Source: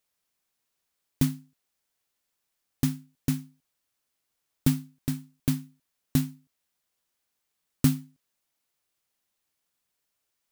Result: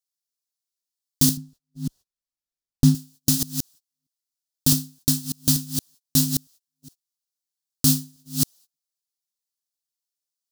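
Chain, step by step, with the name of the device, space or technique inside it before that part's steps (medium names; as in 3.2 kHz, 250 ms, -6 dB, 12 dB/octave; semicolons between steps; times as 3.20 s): chunks repeated in reverse 313 ms, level -12 dB; band-stop 2.2 kHz, Q 6; gate -57 dBFS, range -28 dB; over-bright horn tweeter (resonant high shelf 3.2 kHz +12.5 dB, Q 1.5; peak limiter -12.5 dBFS, peak gain reduction 11 dB); 1.37–2.95 s: tilt EQ -3 dB/octave; trim +7.5 dB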